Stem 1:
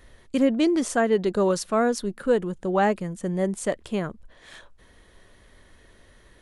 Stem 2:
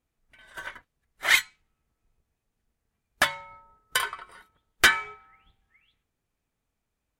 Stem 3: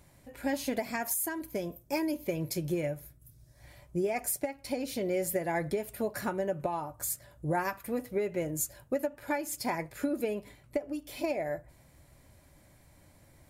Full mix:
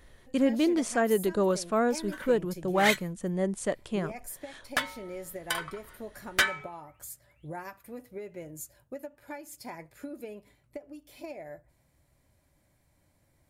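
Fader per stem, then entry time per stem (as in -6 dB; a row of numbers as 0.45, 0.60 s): -4.0, -6.0, -9.5 dB; 0.00, 1.55, 0.00 s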